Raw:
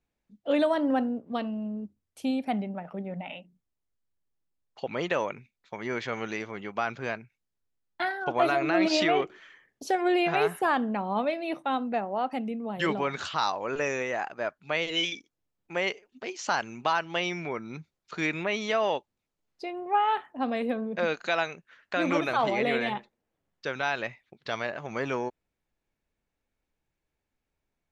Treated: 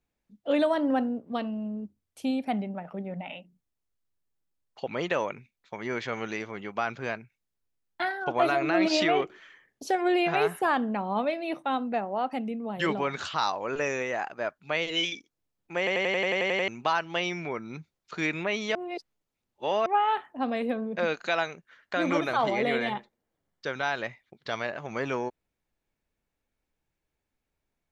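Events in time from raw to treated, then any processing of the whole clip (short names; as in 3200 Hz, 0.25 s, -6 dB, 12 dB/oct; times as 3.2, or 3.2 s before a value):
15.78 stutter in place 0.09 s, 10 plays
18.75–19.86 reverse
21.39–24.53 notch 2600 Hz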